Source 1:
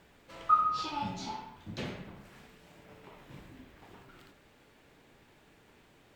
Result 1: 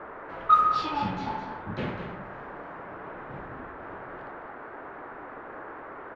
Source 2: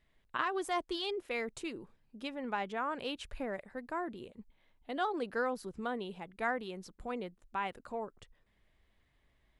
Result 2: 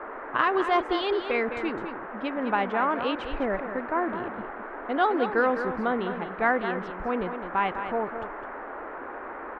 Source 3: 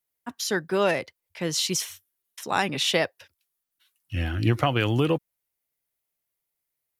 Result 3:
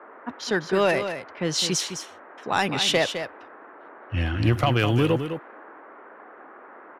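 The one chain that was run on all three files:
band noise 270–1700 Hz -48 dBFS; low-pass opened by the level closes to 1500 Hz, open at -19.5 dBFS; soft clip -12.5 dBFS; on a send: echo 0.208 s -9 dB; on the sum: normalise peaks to -9 dBFS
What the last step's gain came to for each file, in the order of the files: +6.5, +10.5, +2.5 dB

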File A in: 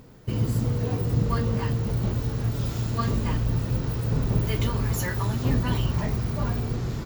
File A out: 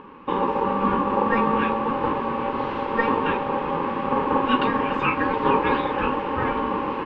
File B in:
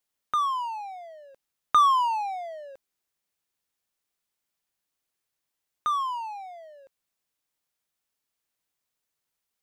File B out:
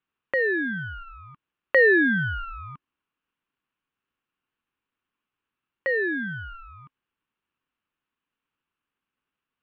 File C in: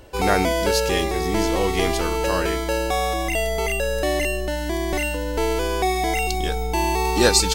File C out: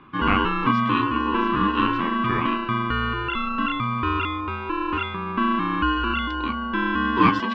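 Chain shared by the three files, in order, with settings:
speaker cabinet 250–2300 Hz, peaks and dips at 410 Hz +6 dB, 650 Hz -4 dB, 1300 Hz -6 dB, 2100 Hz +5 dB; ring modulator 680 Hz; match loudness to -23 LUFS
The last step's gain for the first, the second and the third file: +12.5, +8.0, +2.5 dB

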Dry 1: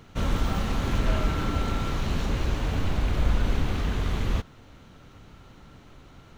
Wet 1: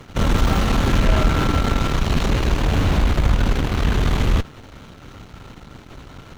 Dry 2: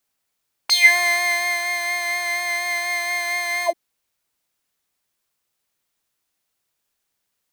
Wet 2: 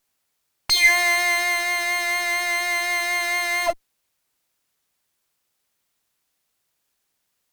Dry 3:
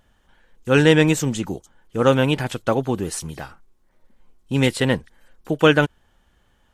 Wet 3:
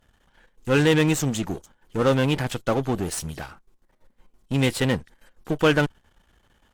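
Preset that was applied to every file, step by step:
half-wave gain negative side -12 dB; tube stage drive 11 dB, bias 0.65; normalise peaks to -6 dBFS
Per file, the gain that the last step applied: +16.5, +9.0, +7.0 dB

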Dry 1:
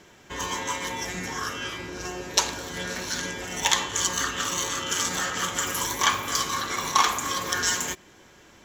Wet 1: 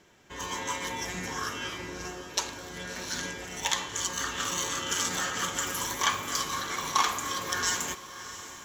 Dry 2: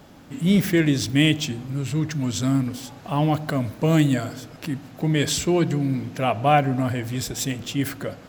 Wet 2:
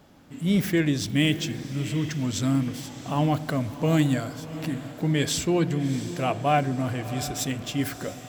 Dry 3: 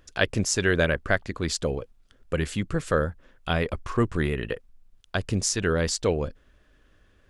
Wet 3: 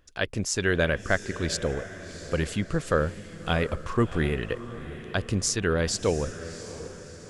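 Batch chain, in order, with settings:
AGC gain up to 5 dB; diffused feedback echo 0.691 s, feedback 46%, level -13 dB; normalise peaks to -9 dBFS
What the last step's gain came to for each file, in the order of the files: -8.0, -7.0, -5.0 dB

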